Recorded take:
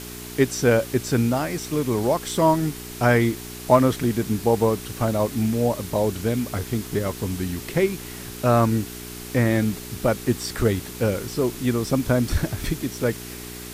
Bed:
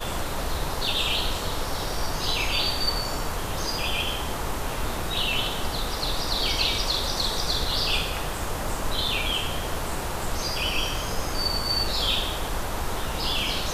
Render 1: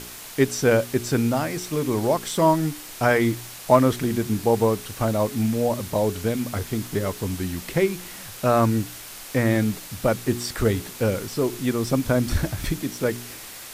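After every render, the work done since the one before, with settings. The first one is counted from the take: de-hum 60 Hz, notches 7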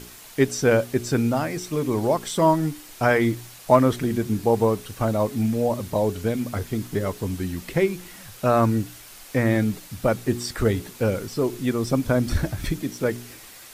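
noise reduction 6 dB, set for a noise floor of -39 dBFS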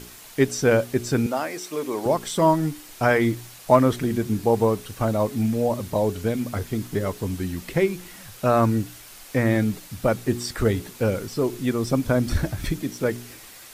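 1.26–2.06 s: high-pass 360 Hz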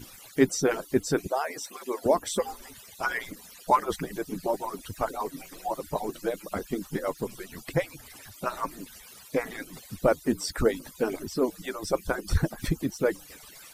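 harmonic-percussive separation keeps percussive; dynamic bell 2.8 kHz, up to -4 dB, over -47 dBFS, Q 1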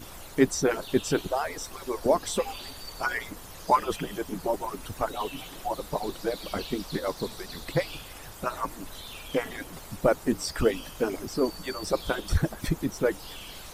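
add bed -17 dB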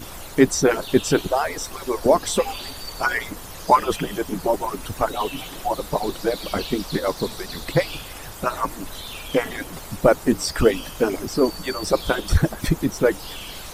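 trim +7 dB; peak limiter -3 dBFS, peak gain reduction 1.5 dB

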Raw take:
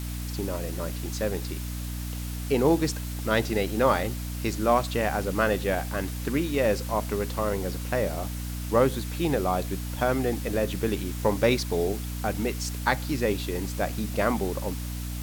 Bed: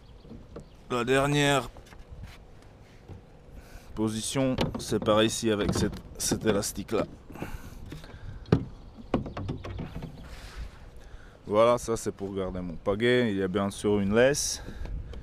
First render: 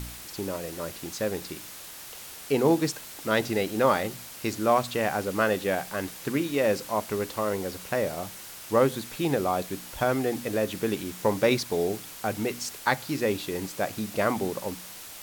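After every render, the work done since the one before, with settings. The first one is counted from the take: de-hum 60 Hz, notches 5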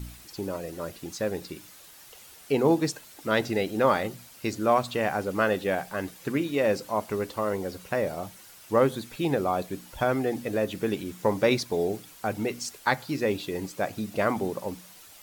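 noise reduction 9 dB, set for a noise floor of -43 dBFS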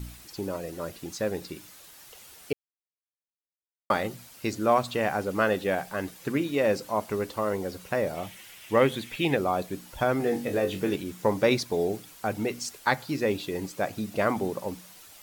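2.53–3.90 s: mute; 8.15–9.37 s: high-order bell 2.5 kHz +9 dB 1.1 oct; 10.18–10.96 s: flutter echo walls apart 3.6 m, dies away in 0.22 s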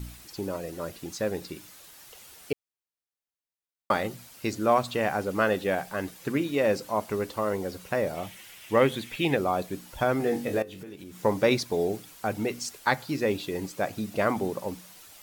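10.62–11.24 s: compression 8:1, threshold -39 dBFS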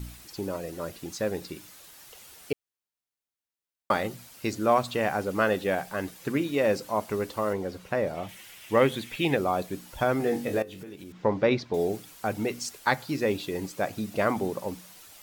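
7.53–8.29 s: treble shelf 5.6 kHz -10 dB; 11.12–11.74 s: distance through air 200 m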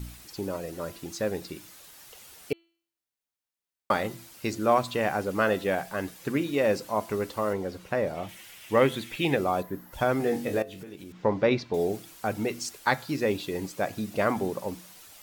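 9.62–9.93 s: time-frequency box 2.1–11 kHz -13 dB; de-hum 335.7 Hz, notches 13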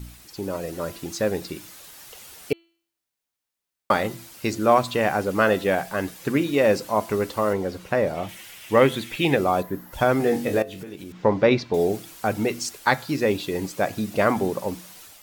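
level rider gain up to 5.5 dB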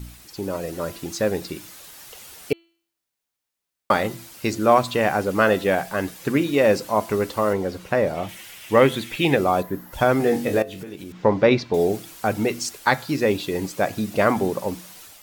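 trim +1.5 dB; peak limiter -3 dBFS, peak gain reduction 1 dB

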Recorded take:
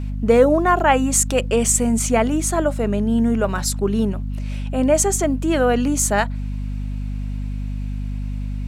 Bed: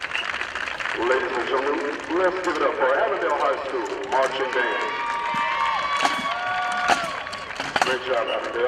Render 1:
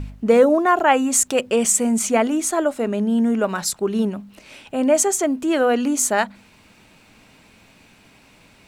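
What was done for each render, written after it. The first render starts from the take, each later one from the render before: de-hum 50 Hz, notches 5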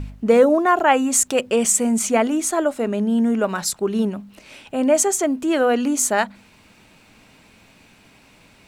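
no audible change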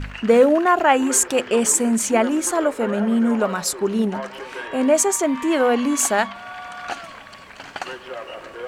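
add bed -10 dB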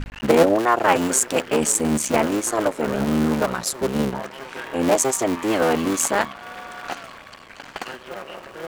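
cycle switcher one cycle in 3, muted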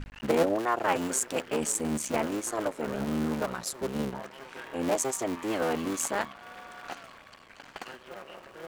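trim -9.5 dB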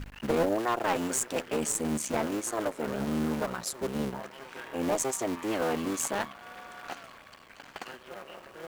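one-sided clip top -25 dBFS; companded quantiser 6-bit

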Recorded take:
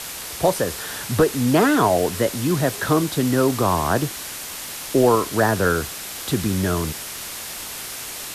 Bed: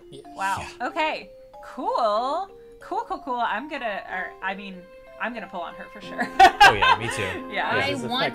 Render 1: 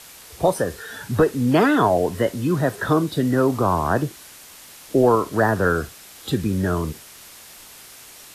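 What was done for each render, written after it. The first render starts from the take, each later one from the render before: noise print and reduce 11 dB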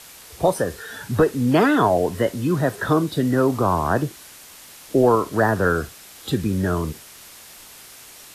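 no audible change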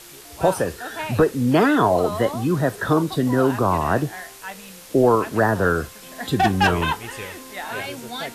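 add bed -6.5 dB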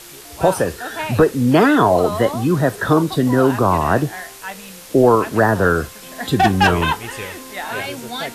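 trim +4 dB; peak limiter -3 dBFS, peak gain reduction 1 dB

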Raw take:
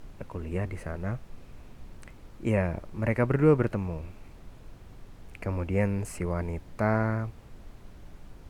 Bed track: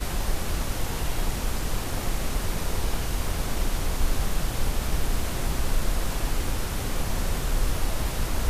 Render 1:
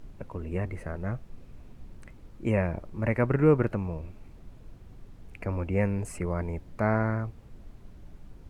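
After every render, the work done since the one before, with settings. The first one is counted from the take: noise reduction 6 dB, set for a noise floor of -50 dBFS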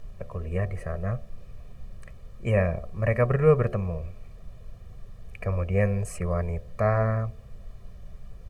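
comb 1.7 ms, depth 93%; de-hum 72.63 Hz, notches 10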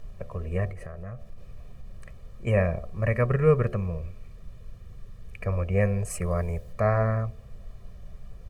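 0.70–2.47 s: compression, threshold -34 dBFS; 3.05–5.47 s: peaking EQ 720 Hz -6 dB 0.69 oct; 6.10–6.73 s: treble shelf 6.5 kHz +10 dB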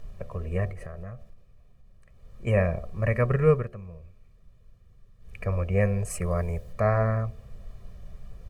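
1.02–2.50 s: dip -13 dB, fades 0.41 s; 3.50–5.37 s: dip -12 dB, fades 0.18 s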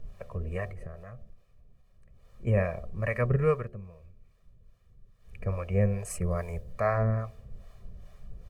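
harmonic tremolo 2.4 Hz, depth 70%, crossover 530 Hz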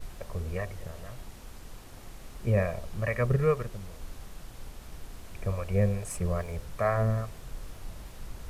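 add bed track -18.5 dB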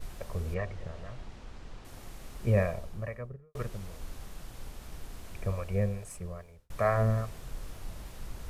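0.54–1.85 s: distance through air 110 m; 2.54–3.55 s: studio fade out; 5.30–6.70 s: fade out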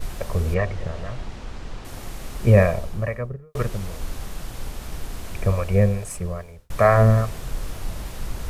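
trim +11.5 dB; peak limiter -3 dBFS, peak gain reduction 1 dB

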